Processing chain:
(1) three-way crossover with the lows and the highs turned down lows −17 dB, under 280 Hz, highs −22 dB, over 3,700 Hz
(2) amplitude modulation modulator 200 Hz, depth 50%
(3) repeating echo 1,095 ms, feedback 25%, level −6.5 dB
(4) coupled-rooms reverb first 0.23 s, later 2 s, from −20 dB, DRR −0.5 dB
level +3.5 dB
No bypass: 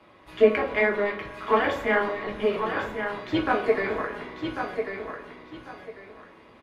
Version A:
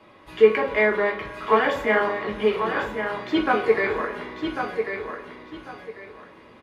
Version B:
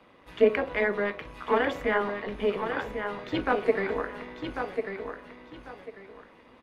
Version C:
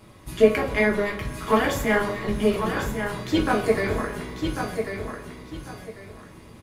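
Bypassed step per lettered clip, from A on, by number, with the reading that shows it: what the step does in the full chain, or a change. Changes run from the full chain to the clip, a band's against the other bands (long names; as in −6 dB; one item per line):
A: 2, 125 Hz band −3.0 dB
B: 4, change in integrated loudness −3.0 LU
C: 1, 125 Hz band +9.5 dB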